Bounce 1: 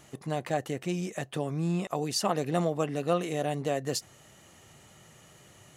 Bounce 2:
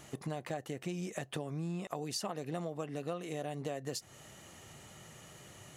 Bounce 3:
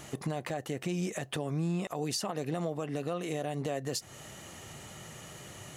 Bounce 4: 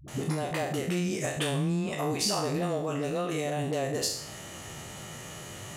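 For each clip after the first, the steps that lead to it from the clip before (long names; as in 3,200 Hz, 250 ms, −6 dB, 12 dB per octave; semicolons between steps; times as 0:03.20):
downward compressor 6 to 1, threshold −37 dBFS, peak gain reduction 15.5 dB; level +1.5 dB
brickwall limiter −29.5 dBFS, peak gain reduction 7 dB; level +6.5 dB
peak hold with a decay on every bin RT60 0.65 s; all-pass dispersion highs, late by 80 ms, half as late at 300 Hz; level +3 dB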